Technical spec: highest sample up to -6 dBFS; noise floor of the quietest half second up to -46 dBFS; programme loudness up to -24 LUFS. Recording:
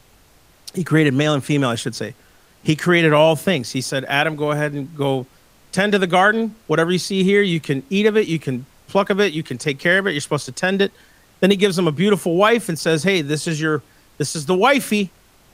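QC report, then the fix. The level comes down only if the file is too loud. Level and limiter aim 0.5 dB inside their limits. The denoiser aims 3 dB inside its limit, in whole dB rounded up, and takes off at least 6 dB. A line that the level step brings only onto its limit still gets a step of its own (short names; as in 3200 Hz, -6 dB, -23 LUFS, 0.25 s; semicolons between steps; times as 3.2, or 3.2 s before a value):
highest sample -2.0 dBFS: fail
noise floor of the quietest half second -52 dBFS: OK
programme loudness -18.5 LUFS: fail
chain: gain -6 dB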